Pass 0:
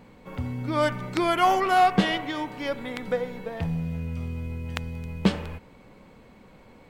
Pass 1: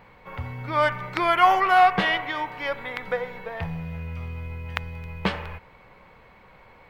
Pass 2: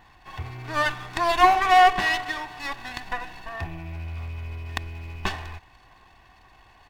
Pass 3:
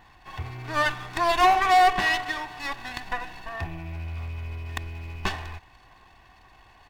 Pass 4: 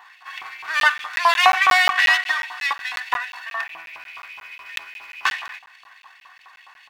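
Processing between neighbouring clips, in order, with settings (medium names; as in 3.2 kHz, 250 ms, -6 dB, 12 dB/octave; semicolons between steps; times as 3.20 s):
ten-band graphic EQ 250 Hz -11 dB, 1 kHz +5 dB, 2 kHz +6 dB, 8 kHz -10 dB
comb filter that takes the minimum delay 1.1 ms; comb 2.7 ms, depth 54%; trim -1.5 dB
hard clipper -13.5 dBFS, distortion -13 dB
LFO high-pass saw up 4.8 Hz 990–2700 Hz; crackling interface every 0.18 s, samples 512, zero, from 0.80 s; trim +5.5 dB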